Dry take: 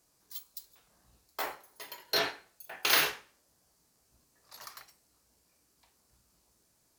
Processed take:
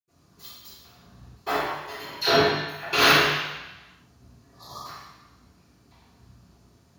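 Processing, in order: block floating point 5-bit; 1.83–2.78 dispersion lows, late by 65 ms, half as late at 1100 Hz; 4.39–4.75 spectral repair 1300–3200 Hz before; reverb RT60 1.0 s, pre-delay 76 ms, DRR -60 dB; gain -6 dB

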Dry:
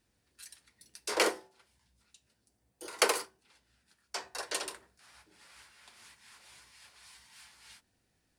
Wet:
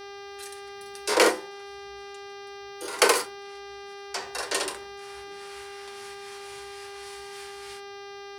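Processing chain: buzz 400 Hz, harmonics 15, -55 dBFS -5 dB/oct; harmonic-percussive split harmonic +9 dB; gain +4.5 dB

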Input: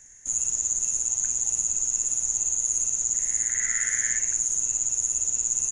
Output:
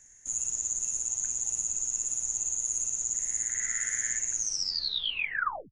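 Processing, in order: tape stop at the end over 1.38 s; gain -5.5 dB

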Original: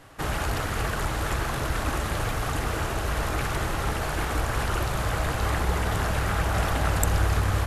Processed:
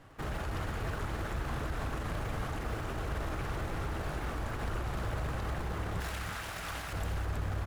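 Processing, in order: high shelf 4100 Hz -9 dB; in parallel at -8 dB: decimation with a swept rate 40×, swing 60% 2.1 Hz; on the sum: limiter -21.5 dBFS, peak gain reduction 12.5 dB; 6–6.93 tilt shelf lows -9 dB, about 1100 Hz; on a send: echo 0.321 s -6.5 dB; on the sum: gain -6.5 dB

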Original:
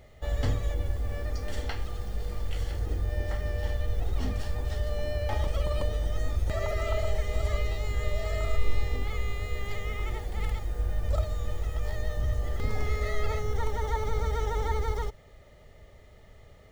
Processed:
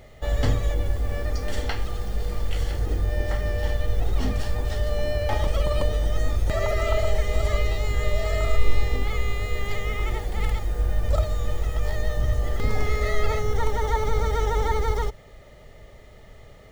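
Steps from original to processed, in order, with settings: bell 76 Hz -8.5 dB 0.32 oct; gain +6.5 dB

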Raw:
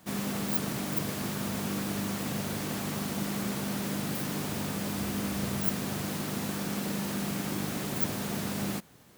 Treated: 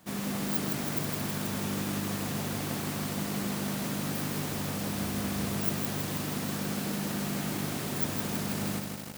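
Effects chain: lo-fi delay 0.161 s, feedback 80%, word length 7-bit, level -4.5 dB; gain -1.5 dB

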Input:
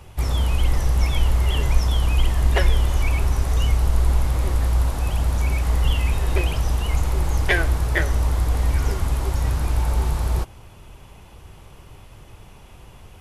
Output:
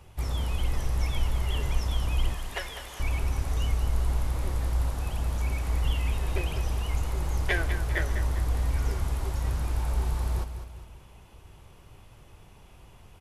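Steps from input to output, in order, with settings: 2.35–3 HPF 1000 Hz 6 dB/oct; on a send: feedback echo 0.201 s, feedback 43%, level -10 dB; on the sum: gain -8 dB

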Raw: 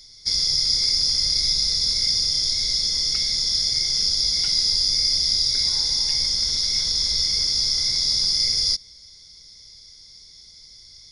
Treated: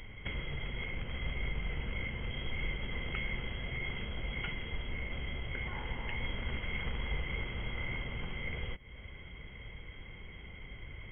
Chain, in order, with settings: compressor 6:1, threshold -31 dBFS, peak gain reduction 13.5 dB; added harmonics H 5 -23 dB, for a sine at -19.5 dBFS; brick-wall FIR low-pass 3300 Hz; gain +11 dB

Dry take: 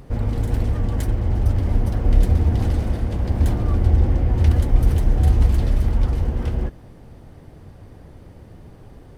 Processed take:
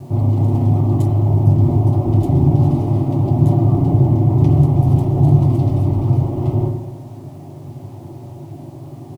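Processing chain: minimum comb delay 8.5 ms; HPF 120 Hz 12 dB/oct; tilt shelf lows +9.5 dB, about 1200 Hz; in parallel at +2 dB: limiter -18.5 dBFS, peak gain reduction 15 dB; on the sum: fixed phaser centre 320 Hz, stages 8; bit-crush 9-bit; doubler 21 ms -11 dB; on a send at -3.5 dB: reverb RT60 1.0 s, pre-delay 37 ms; on the sum: gain -1 dB

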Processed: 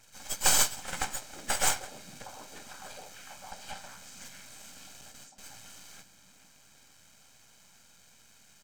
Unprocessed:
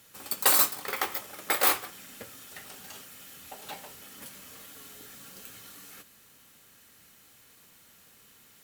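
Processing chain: nonlinear frequency compression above 1700 Hz 1.5:1; 5.01–5.58 gate with hold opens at -37 dBFS; comb 1.3 ms, depth 75%; half-wave rectifier; on a send: delay with a stepping band-pass 0.451 s, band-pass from 190 Hz, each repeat 0.7 oct, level -5.5 dB

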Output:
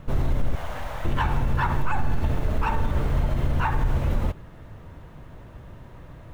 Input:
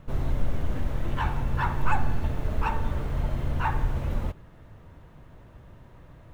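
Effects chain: 0.55–1.05 resonant low shelf 490 Hz -12.5 dB, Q 1.5; limiter -20 dBFS, peak gain reduction 9.5 dB; gain +6 dB

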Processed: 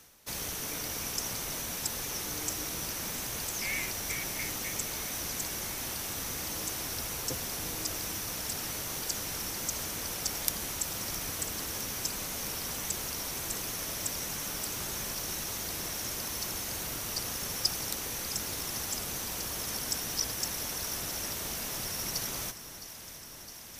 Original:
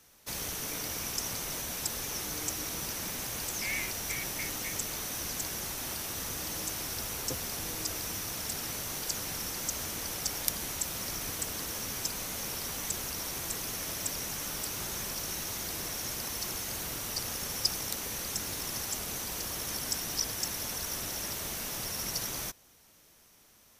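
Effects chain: echo with dull and thin repeats by turns 0.331 s, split 1600 Hz, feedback 87%, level -13 dB; reverse; upward compressor, threshold -42 dBFS; reverse

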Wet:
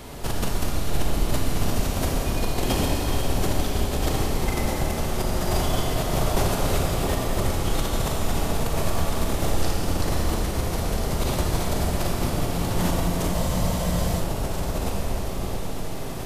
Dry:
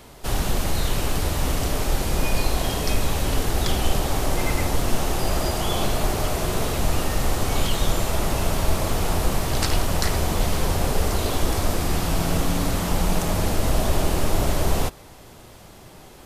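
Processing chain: low shelf 410 Hz +3.5 dB; negative-ratio compressor -25 dBFS, ratio -1; echo with dull and thin repeats by turns 0.667 s, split 910 Hz, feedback 57%, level -3.5 dB; Schroeder reverb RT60 3.7 s, combs from 27 ms, DRR -2 dB; spectral freeze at 13.35, 0.86 s; gain -3.5 dB

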